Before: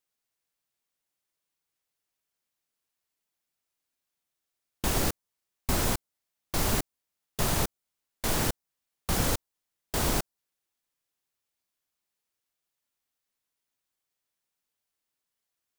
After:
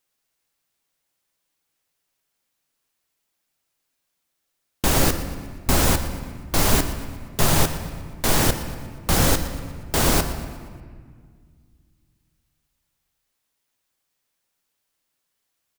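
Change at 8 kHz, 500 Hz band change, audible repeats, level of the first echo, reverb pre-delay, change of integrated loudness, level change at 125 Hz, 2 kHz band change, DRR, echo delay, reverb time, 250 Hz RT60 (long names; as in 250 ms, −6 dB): +8.5 dB, +9.0 dB, 4, −16.0 dB, 4 ms, +8.0 dB, +9.5 dB, +9.0 dB, 7.0 dB, 119 ms, 1.9 s, 2.6 s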